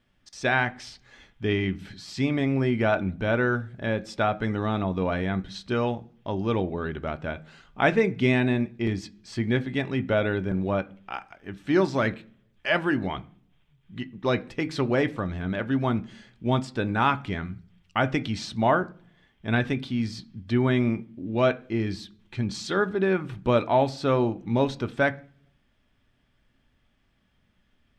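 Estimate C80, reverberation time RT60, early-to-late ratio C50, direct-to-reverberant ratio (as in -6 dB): 25.5 dB, 0.50 s, 20.5 dB, 10.0 dB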